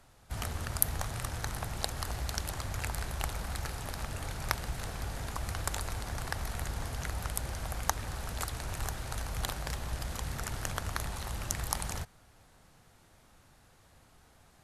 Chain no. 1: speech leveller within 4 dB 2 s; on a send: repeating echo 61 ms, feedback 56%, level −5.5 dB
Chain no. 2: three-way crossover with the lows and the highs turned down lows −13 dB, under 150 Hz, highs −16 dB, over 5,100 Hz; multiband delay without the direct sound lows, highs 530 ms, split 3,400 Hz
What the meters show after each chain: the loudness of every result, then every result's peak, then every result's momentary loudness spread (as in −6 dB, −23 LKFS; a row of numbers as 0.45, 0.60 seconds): −34.5, −41.5 LKFS; −2.5, −10.5 dBFS; 4, 5 LU